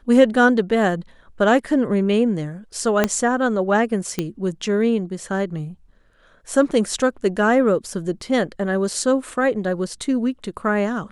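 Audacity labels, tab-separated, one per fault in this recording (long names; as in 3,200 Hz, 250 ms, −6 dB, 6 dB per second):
3.040000	3.040000	click −3 dBFS
4.190000	4.190000	click −9 dBFS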